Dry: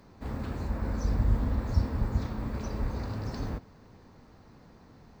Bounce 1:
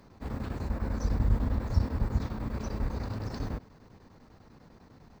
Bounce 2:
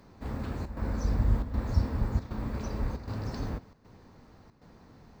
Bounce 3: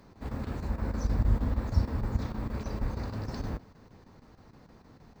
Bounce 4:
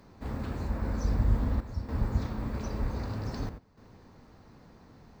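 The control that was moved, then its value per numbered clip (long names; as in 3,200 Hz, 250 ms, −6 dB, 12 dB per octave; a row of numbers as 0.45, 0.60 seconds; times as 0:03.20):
square-wave tremolo, speed: 10, 1.3, 6.4, 0.53 Hertz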